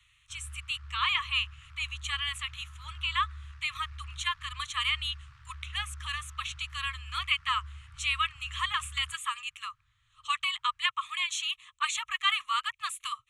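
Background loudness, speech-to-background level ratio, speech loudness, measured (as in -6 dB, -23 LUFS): -47.5 LUFS, 16.0 dB, -31.5 LUFS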